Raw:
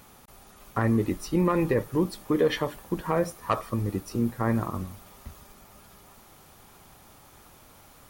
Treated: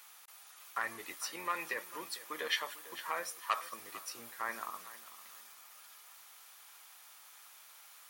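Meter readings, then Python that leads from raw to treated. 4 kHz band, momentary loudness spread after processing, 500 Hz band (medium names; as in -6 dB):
0.0 dB, 18 LU, -19.5 dB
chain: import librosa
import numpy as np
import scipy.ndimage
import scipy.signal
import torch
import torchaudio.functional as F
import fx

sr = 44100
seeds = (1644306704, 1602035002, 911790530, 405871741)

p1 = fx.octave_divider(x, sr, octaves=1, level_db=-2.0)
p2 = scipy.signal.sosfilt(scipy.signal.butter(2, 1500.0, 'highpass', fs=sr, output='sos'), p1)
y = p2 + fx.echo_feedback(p2, sr, ms=449, feedback_pct=30, wet_db=-16, dry=0)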